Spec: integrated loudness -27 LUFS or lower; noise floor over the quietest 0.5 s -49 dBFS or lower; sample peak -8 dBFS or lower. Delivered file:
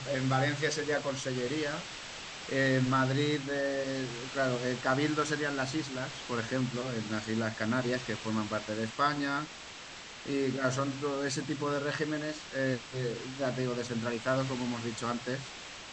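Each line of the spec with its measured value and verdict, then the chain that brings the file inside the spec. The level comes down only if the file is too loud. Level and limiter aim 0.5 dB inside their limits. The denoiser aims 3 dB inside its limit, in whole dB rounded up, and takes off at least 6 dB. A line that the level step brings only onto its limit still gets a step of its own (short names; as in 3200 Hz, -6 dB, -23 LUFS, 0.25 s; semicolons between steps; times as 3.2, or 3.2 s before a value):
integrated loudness -32.5 LUFS: OK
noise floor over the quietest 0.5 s -47 dBFS: fail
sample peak -15.0 dBFS: OK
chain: denoiser 6 dB, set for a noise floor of -47 dBFS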